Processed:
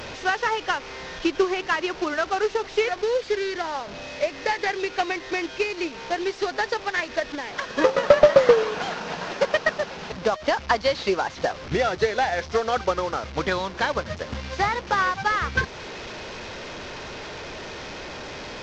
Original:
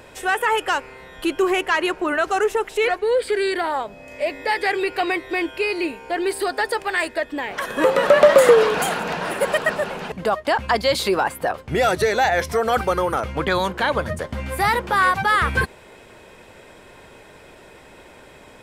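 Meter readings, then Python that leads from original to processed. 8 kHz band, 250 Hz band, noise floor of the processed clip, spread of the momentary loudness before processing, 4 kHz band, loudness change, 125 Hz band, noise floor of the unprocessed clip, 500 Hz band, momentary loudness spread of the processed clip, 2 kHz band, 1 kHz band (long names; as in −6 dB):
−6.0 dB, −4.0 dB, −39 dBFS, 10 LU, −2.5 dB, −4.0 dB, −4.5 dB, −46 dBFS, −3.5 dB, 13 LU, −4.0 dB, −4.5 dB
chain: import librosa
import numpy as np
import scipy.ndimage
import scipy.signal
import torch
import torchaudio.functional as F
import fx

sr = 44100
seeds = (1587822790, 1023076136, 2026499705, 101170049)

y = fx.delta_mod(x, sr, bps=32000, step_db=-23.5)
y = fx.transient(y, sr, attack_db=8, sustain_db=-3)
y = y * librosa.db_to_amplitude(-6.5)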